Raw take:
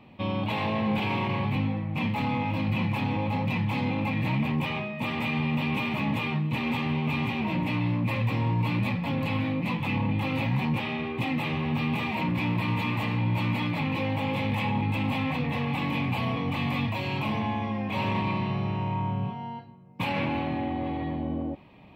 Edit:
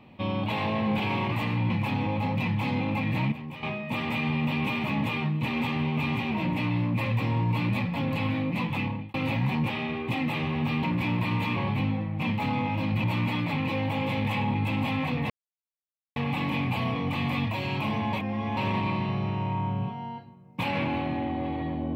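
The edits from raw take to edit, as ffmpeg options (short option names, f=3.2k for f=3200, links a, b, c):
-filter_complex "[0:a]asplit=12[a][b][c][d][e][f][g][h][i][j][k][l];[a]atrim=end=1.322[m];[b]atrim=start=12.928:end=13.312[n];[c]atrim=start=2.798:end=4.422[o];[d]atrim=start=4.418:end=4.732,asetpts=PTS-STARTPTS,volume=-11dB[p];[e]atrim=start=4.728:end=10.24,asetpts=PTS-STARTPTS,afade=t=out:st=5.142:d=0.37[q];[f]atrim=start=10.24:end=11.932,asetpts=PTS-STARTPTS,afade=t=in:d=0.004:c=hsin[r];[g]atrim=start=12.198:end=12.932[s];[h]atrim=start=1.318:end=2.802[t];[i]atrim=start=13.308:end=15.57,asetpts=PTS-STARTPTS,afade=t=out:st=2.258:d=0.004:c=hsin,apad=pad_dur=0.86[u];[j]atrim=start=15.57:end=17.542,asetpts=PTS-STARTPTS,afade=t=in:d=0.004:c=hsin[v];[k]atrim=start=17.538:end=17.982,asetpts=PTS-STARTPTS,areverse[w];[l]atrim=start=17.978[x];[m][n]acrossfade=d=0.004:c1=hsin:c2=hsin[y];[y][o]acrossfade=d=0.004:c1=hsin:c2=hsin[z];[z][p]acrossfade=d=0.004:c1=hsin:c2=hsin[aa];[q][r]concat=n=2:v=0:a=1[ab];[aa][ab]acrossfade=d=0.004:c1=hsin:c2=hsin[ac];[ac][s]acrossfade=d=0.004:c1=hsin:c2=hsin[ad];[ad][t]acrossfade=d=0.004:c1=hsin:c2=hsin[ae];[u][v]concat=n=2:v=0:a=1[af];[ae][af]acrossfade=d=0.004:c1=hsin:c2=hsin[ag];[ag][w]acrossfade=d=0.004:c1=hsin:c2=hsin[ah];[ah][x]acrossfade=d=0.004:c1=hsin:c2=hsin"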